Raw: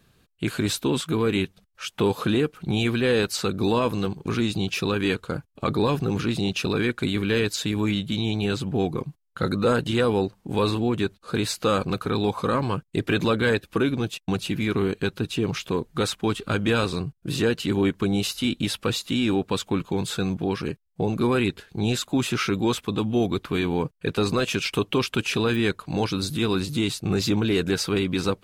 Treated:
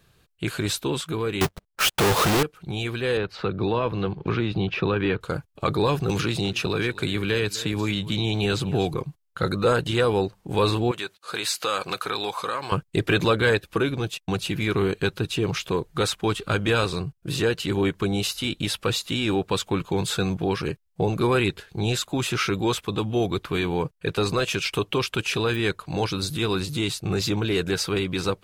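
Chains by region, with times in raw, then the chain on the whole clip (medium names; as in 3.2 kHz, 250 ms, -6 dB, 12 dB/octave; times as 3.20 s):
1.41–2.43 s: square wave that keeps the level + waveshaping leveller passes 5 + tape noise reduction on one side only decoder only
3.17–5.21 s: distance through air 340 m + three bands compressed up and down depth 70%
6.09–8.94 s: delay 252 ms -19.5 dB + three bands compressed up and down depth 70%
10.91–12.72 s: high-pass 1.2 kHz 6 dB/octave + compression 2:1, threshold -31 dBFS
whole clip: peaking EQ 240 Hz -8.5 dB 0.57 oct; gain riding 2 s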